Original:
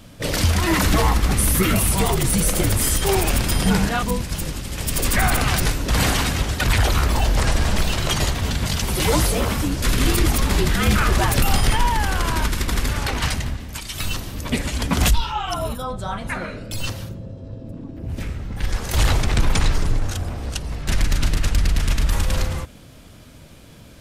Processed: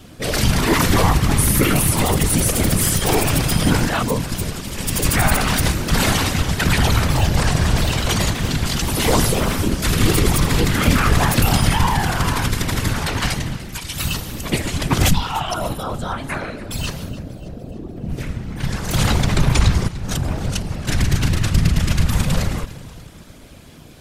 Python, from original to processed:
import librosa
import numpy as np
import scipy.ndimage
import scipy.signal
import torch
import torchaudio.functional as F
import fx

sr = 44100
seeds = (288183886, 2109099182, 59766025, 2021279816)

y = fx.quant_float(x, sr, bits=8, at=(3.91, 4.61))
y = fx.high_shelf(y, sr, hz=9400.0, db=6.0, at=(13.98, 14.61))
y = fx.over_compress(y, sr, threshold_db=-25.0, ratio=-1.0, at=(19.88, 20.63))
y = fx.echo_feedback(y, sr, ms=294, feedback_pct=52, wet_db=-17.5)
y = fx.whisperise(y, sr, seeds[0])
y = y * 10.0 ** (2.0 / 20.0)